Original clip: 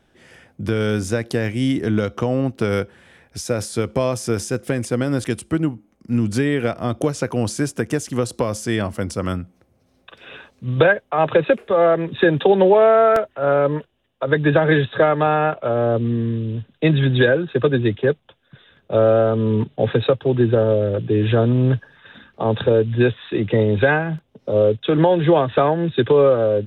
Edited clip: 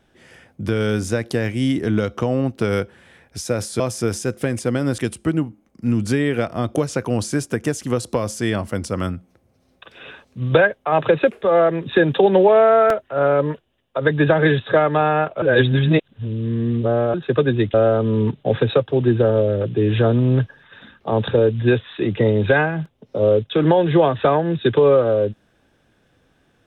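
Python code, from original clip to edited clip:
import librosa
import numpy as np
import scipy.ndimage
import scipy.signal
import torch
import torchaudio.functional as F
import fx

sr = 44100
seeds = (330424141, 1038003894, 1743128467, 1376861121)

y = fx.edit(x, sr, fx.cut(start_s=3.8, length_s=0.26),
    fx.reverse_span(start_s=15.68, length_s=1.72),
    fx.cut(start_s=18.0, length_s=1.07), tone=tone)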